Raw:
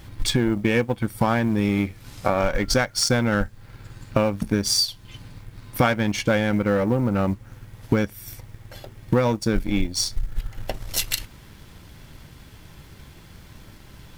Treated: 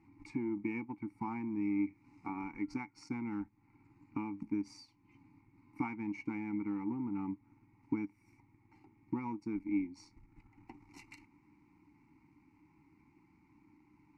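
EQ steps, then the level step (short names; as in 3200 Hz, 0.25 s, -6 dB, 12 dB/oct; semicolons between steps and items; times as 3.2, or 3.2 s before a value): vowel filter u; LPF 8800 Hz; fixed phaser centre 1400 Hz, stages 4; -1.5 dB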